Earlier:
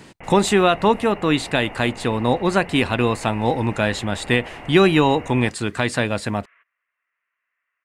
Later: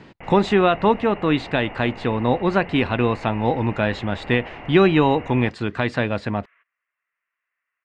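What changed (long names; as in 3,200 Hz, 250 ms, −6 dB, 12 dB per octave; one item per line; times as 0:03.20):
speech: add high-frequency loss of the air 210 metres
second sound −3.5 dB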